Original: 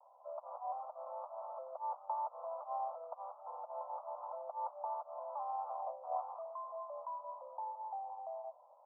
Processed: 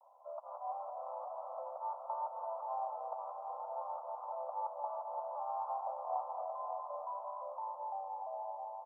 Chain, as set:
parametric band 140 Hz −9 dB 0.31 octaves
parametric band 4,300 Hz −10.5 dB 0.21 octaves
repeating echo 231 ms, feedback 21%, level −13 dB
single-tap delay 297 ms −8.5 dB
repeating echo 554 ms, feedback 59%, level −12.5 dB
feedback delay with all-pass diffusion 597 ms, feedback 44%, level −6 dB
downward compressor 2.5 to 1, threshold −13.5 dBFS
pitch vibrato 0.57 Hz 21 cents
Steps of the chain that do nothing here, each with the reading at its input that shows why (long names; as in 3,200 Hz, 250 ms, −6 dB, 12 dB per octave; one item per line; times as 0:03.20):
parametric band 140 Hz: nothing at its input below 480 Hz
parametric band 4,300 Hz: nothing at its input above 1,400 Hz
downward compressor, threshold −13.5 dBFS: peak of its input −25.0 dBFS